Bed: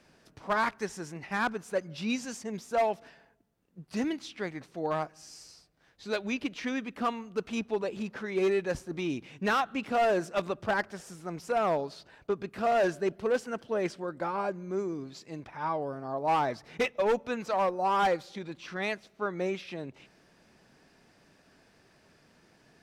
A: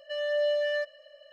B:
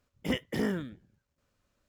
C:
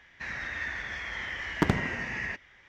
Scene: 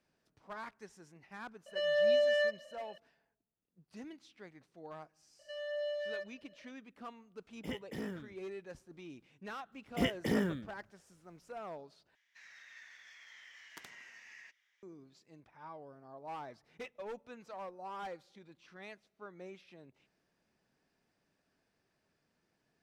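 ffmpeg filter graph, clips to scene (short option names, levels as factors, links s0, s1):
-filter_complex "[1:a]asplit=2[s0][s1];[2:a]asplit=2[s2][s3];[0:a]volume=0.133[s4];[s0]bandreject=f=1400:w=12[s5];[3:a]aderivative[s6];[s4]asplit=2[s7][s8];[s7]atrim=end=12.154[s9];[s6]atrim=end=2.68,asetpts=PTS-STARTPTS,volume=0.355[s10];[s8]atrim=start=14.826[s11];[s5]atrim=end=1.32,asetpts=PTS-STARTPTS,volume=0.891,afade=t=in:d=0.004:c=hsin,afade=t=out:st=1.316:d=0.004:c=hsin,adelay=1660[s12];[s1]atrim=end=1.32,asetpts=PTS-STARTPTS,volume=0.282,afade=t=in:d=0.004:c=hsin,afade=t=out:st=1.316:d=0.004:c=hsin,adelay=5390[s13];[s2]atrim=end=1.88,asetpts=PTS-STARTPTS,volume=0.282,afade=t=in:d=0.004:c=hsin,afade=t=out:st=1.876:d=0.004:c=hsin,adelay=7390[s14];[s3]atrim=end=1.88,asetpts=PTS-STARTPTS,volume=0.841,afade=t=in:d=0.004:c=hsin,afade=t=out:st=1.876:d=0.004:c=hsin,adelay=9720[s15];[s9][s10]acrossfade=d=0.004:c1=hsin:c2=hsin[s16];[s16][s11]acrossfade=d=0.004:c1=hsin:c2=hsin[s17];[s17][s12][s13][s14][s15]amix=inputs=5:normalize=0"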